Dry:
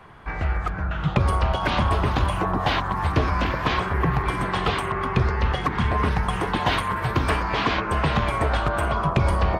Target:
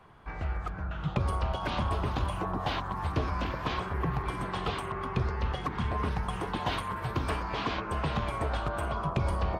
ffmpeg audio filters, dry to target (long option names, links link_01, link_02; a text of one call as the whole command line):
ffmpeg -i in.wav -af "equalizer=frequency=1900:width_type=o:width=0.77:gain=-4,volume=-8.5dB" out.wav